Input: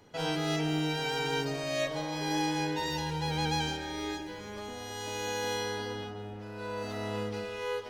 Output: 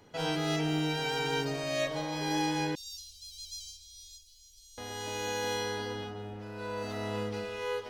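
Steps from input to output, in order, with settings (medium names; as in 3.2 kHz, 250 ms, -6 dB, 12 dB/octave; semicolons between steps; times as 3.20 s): 2.75–4.78 s: inverse Chebyshev band-stop 120–1900 Hz, stop band 50 dB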